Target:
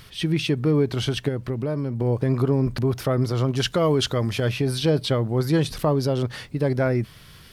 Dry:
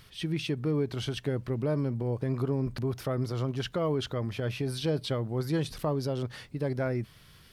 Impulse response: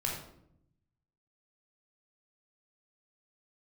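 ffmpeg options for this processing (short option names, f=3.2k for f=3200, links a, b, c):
-filter_complex "[0:a]asettb=1/sr,asplit=3[a][b][c];[a]atrim=end=1.284[d];[b]atrim=start=1.28:end=2,asetpts=PTS-STARTPTS,afade=t=in:d=0.004:c=qsin,afade=t=out:st=0.716:d=0.004:c=qsin,acompressor=threshold=-34dB:ratio=2.5[e];[c]atrim=start=1.996[f];[d][e]acrossfade=d=0.004:c1=hsin:c2=qsin[g];[g][f]acrossfade=d=0.004:c1=qsin:c2=hsin,asettb=1/sr,asplit=3[h][i][j];[h]atrim=end=3.554[k];[i]atrim=start=3.55:end=4.5,asetpts=PTS-STARTPTS,afade=t=in:d=0.004:c=qsin,afade=t=out:st=0.946:d=0.004:c=qsin,equalizer=f=8.3k:t=o:w=2.2:g=8[l];[j]atrim=start=4.496[m];[k][l]acrossfade=d=0.004:c1=hsin:c2=qsin[n];[n][m]acrossfade=d=0.004:c1=qsin:c2=hsin,volume=8.5dB"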